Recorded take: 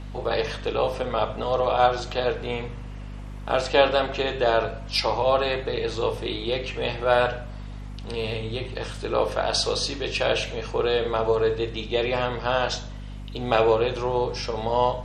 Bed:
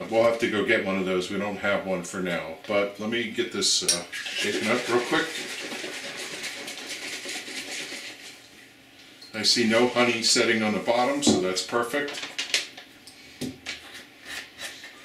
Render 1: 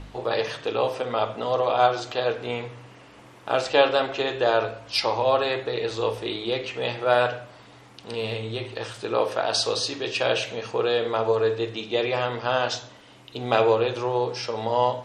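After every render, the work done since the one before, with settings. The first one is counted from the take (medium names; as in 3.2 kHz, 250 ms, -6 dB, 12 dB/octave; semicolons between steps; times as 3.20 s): de-hum 50 Hz, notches 5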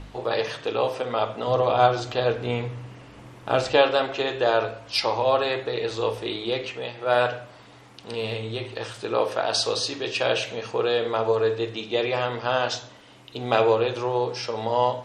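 1.47–3.77 s: bass shelf 200 Hz +12 dB; 6.67–7.18 s: dip -8.5 dB, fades 0.25 s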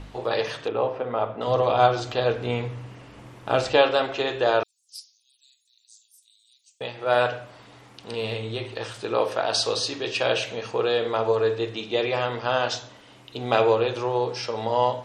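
0.68–1.41 s: Bessel low-pass 1.5 kHz; 4.63–6.81 s: inverse Chebyshev high-pass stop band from 1.3 kHz, stop band 80 dB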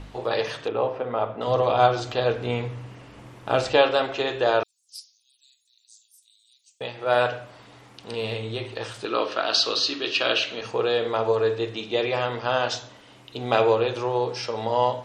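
9.05–10.61 s: cabinet simulation 210–6300 Hz, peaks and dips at 300 Hz +5 dB, 490 Hz -5 dB, 840 Hz -6 dB, 1.3 kHz +6 dB, 2.9 kHz +6 dB, 4.2 kHz +6 dB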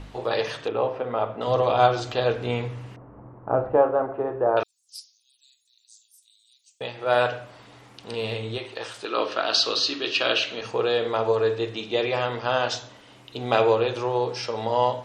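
2.96–4.57 s: low-pass 1.2 kHz 24 dB/octave; 8.58–9.18 s: high-pass 380 Hz 6 dB/octave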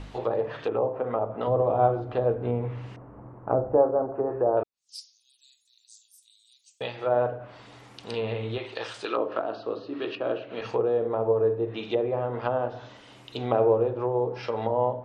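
low-pass that closes with the level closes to 690 Hz, closed at -21.5 dBFS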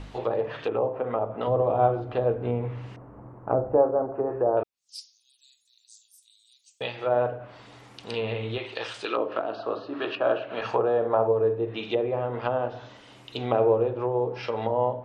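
9.58–11.27 s: time-frequency box 550–1800 Hz +7 dB; dynamic bell 2.7 kHz, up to +4 dB, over -49 dBFS, Q 1.5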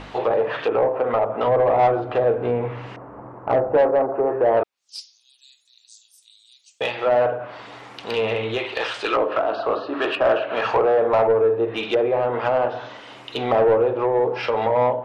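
in parallel at -10 dB: saturation -24 dBFS, distortion -9 dB; on the sum: overdrive pedal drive 17 dB, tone 2 kHz, clips at -8 dBFS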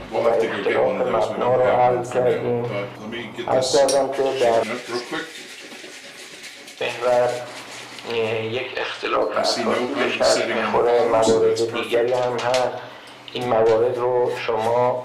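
add bed -3.5 dB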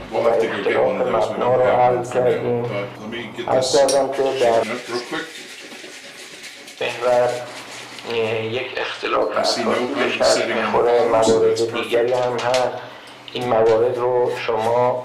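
trim +1.5 dB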